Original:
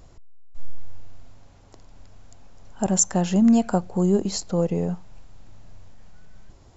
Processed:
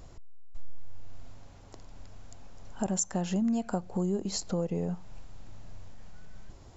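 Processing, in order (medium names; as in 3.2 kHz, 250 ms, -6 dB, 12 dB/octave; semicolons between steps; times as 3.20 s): compression 3:1, threshold -30 dBFS, peak gain reduction 12.5 dB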